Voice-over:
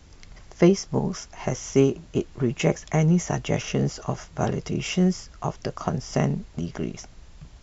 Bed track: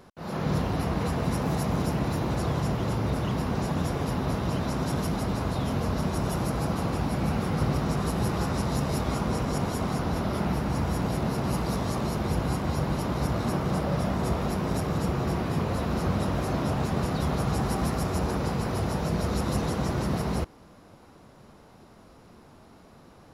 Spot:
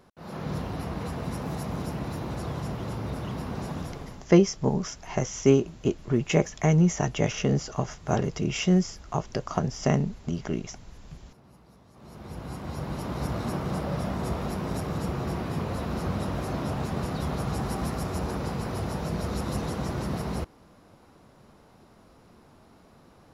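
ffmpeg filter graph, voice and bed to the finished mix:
-filter_complex "[0:a]adelay=3700,volume=0.944[s0];[1:a]volume=8.91,afade=t=out:st=3.71:d=0.57:silence=0.0794328,afade=t=in:st=11.93:d=1.34:silence=0.0595662[s1];[s0][s1]amix=inputs=2:normalize=0"

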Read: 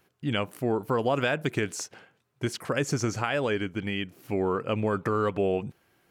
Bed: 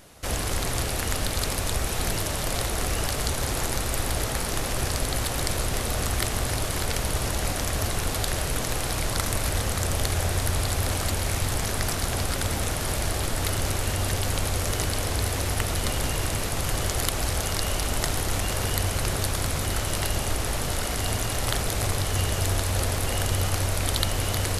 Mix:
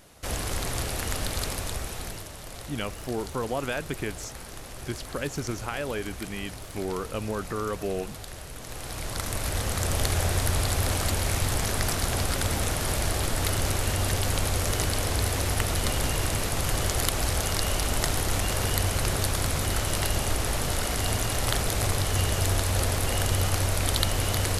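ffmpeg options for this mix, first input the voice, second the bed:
-filter_complex "[0:a]adelay=2450,volume=0.596[s0];[1:a]volume=3.35,afade=t=out:st=1.38:d=0.92:silence=0.298538,afade=t=in:st=8.58:d=1.47:silence=0.211349[s1];[s0][s1]amix=inputs=2:normalize=0"

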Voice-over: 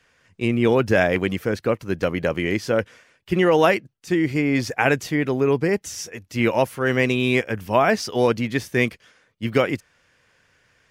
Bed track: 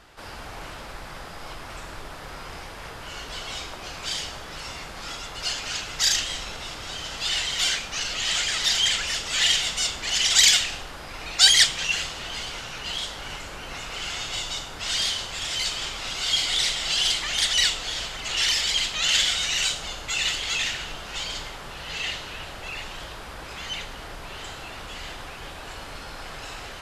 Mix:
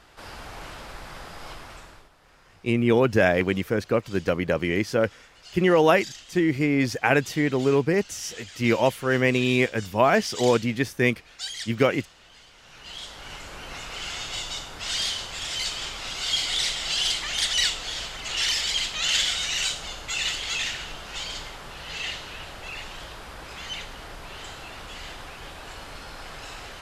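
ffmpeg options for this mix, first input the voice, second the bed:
-filter_complex "[0:a]adelay=2250,volume=0.841[s0];[1:a]volume=5.96,afade=t=out:st=1.5:d=0.6:silence=0.133352,afade=t=in:st=12.56:d=1.03:silence=0.141254[s1];[s0][s1]amix=inputs=2:normalize=0"

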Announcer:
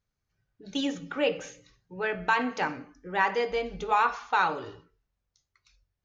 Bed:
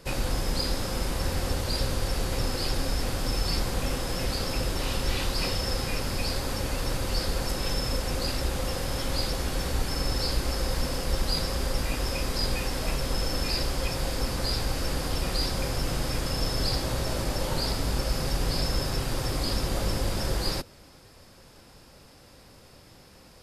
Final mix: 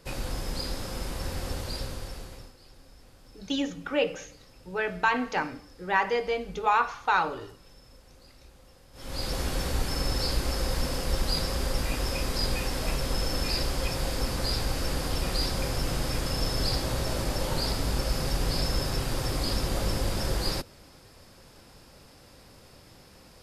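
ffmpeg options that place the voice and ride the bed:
-filter_complex "[0:a]adelay=2750,volume=1.06[s0];[1:a]volume=10,afade=t=out:st=1.61:d=0.93:silence=0.0944061,afade=t=in:st=8.93:d=0.45:silence=0.0562341[s1];[s0][s1]amix=inputs=2:normalize=0"

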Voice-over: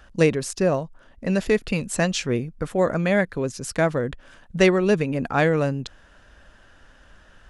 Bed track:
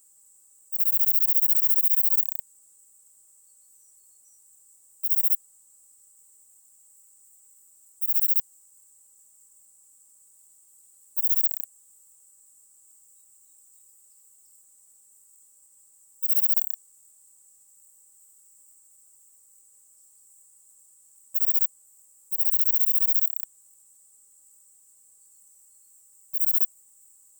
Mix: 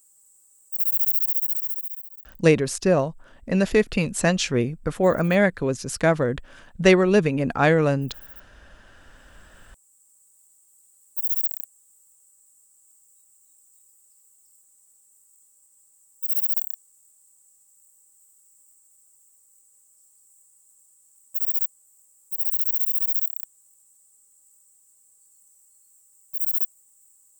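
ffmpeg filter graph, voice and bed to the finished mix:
-filter_complex "[0:a]adelay=2250,volume=1.19[s0];[1:a]volume=11.2,afade=t=out:st=1.09:d=1:silence=0.0749894,afade=t=in:st=8.82:d=1.31:silence=0.0891251[s1];[s0][s1]amix=inputs=2:normalize=0"

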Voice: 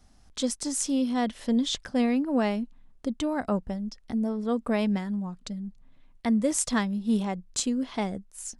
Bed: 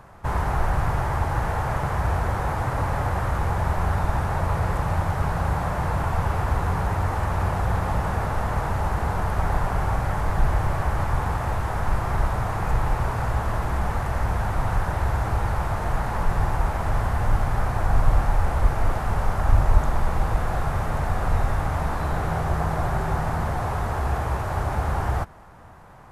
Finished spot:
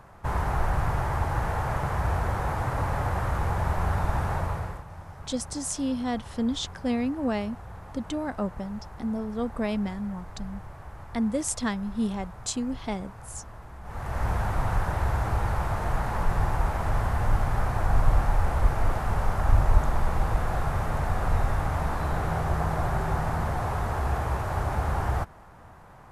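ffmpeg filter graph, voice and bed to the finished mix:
-filter_complex "[0:a]adelay=4900,volume=0.75[s0];[1:a]volume=4.73,afade=t=out:st=4.32:d=0.52:silence=0.158489,afade=t=in:st=13.83:d=0.45:silence=0.149624[s1];[s0][s1]amix=inputs=2:normalize=0"

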